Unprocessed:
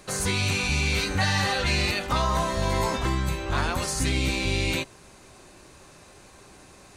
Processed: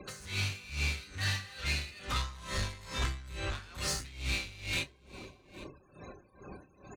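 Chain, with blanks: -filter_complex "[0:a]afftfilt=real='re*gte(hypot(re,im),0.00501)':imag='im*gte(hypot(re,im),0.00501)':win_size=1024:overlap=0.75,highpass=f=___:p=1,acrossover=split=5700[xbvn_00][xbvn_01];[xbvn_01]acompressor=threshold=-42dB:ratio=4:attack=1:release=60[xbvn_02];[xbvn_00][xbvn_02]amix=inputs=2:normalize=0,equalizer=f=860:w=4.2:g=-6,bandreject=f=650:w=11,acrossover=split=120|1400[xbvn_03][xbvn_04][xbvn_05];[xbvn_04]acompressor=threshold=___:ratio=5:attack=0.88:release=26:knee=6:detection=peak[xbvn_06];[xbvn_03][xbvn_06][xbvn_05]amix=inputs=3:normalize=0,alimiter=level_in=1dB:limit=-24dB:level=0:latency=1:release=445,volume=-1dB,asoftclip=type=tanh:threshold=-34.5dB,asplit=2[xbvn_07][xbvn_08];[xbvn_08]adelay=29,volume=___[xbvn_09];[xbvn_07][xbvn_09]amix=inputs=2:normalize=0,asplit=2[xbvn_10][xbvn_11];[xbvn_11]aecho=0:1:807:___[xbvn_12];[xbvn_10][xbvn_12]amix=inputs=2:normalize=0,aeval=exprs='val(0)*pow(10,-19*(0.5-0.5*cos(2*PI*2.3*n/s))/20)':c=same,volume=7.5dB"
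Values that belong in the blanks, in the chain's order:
44, -40dB, -10dB, 0.126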